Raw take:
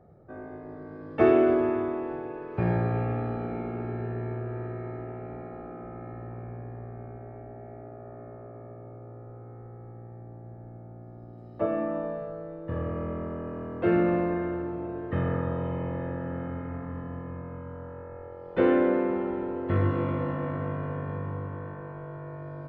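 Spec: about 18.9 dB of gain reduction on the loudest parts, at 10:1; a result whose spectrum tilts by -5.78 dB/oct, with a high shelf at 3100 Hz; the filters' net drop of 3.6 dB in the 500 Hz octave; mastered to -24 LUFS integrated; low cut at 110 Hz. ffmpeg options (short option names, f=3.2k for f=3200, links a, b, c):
-af "highpass=110,equalizer=f=500:t=o:g=-5.5,highshelf=f=3.1k:g=4,acompressor=threshold=-38dB:ratio=10,volume=19.5dB"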